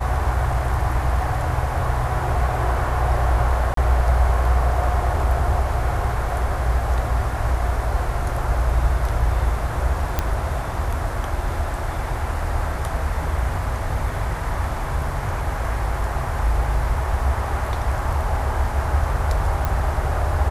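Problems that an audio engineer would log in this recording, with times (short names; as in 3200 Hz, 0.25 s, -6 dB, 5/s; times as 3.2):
3.74–3.77 gap 33 ms
10.19 pop -6 dBFS
19.65 pop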